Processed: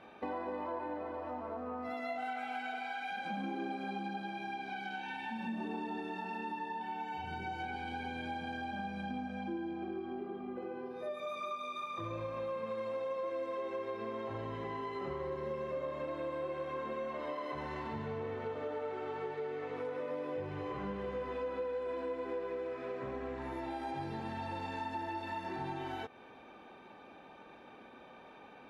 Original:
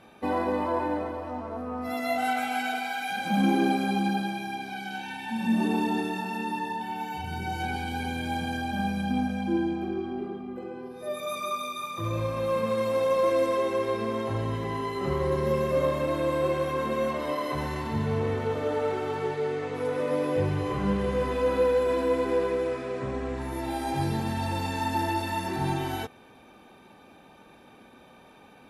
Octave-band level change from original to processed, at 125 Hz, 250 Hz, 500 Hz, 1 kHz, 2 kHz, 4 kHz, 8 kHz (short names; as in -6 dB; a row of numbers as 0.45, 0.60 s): -16.0 dB, -13.0 dB, -11.5 dB, -9.0 dB, -9.5 dB, -12.5 dB, under -20 dB